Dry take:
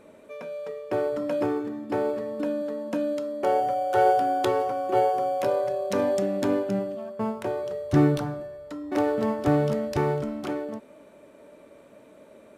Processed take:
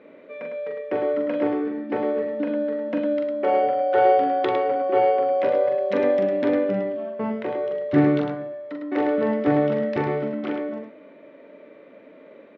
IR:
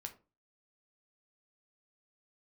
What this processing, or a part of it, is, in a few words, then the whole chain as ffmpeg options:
kitchen radio: -af "highpass=180,equalizer=frequency=280:width_type=q:width=4:gain=5,equalizer=frequency=490:width_type=q:width=4:gain=5,equalizer=frequency=870:width_type=q:width=4:gain=-3,equalizer=frequency=2000:width_type=q:width=4:gain=8,lowpass=frequency=3600:width=0.5412,lowpass=frequency=3600:width=1.3066,aecho=1:1:42|105:0.596|0.501"

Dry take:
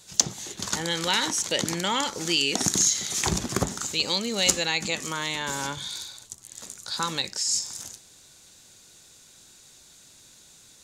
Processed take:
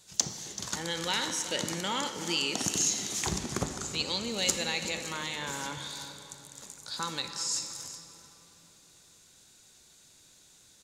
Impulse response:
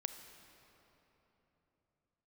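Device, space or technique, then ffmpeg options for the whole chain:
cave: -filter_complex "[0:a]asettb=1/sr,asplit=3[link_01][link_02][link_03];[link_01]atrim=end=3.354[link_04];[link_02]atrim=start=3.35:end=4.29,asetpts=PTS-STARTPTS,afade=type=in:duration=0.004:curve=qsin,afade=type=out:start_time=0.936:duration=0.004:curve=qsin,lowpass=11000[link_05];[link_03]atrim=start=4.286[link_06];[link_04][link_05]acrossfade=duration=0.004:curve1=hsin:curve2=qsin[link_07];[link_07][link_06]acrossfade=duration=0.004:curve1=qsin:curve2=hsin,aecho=1:1:384:0.188[link_08];[1:a]atrim=start_sample=2205[link_09];[link_08][link_09]afir=irnorm=-1:irlink=0,volume=-4.5dB"

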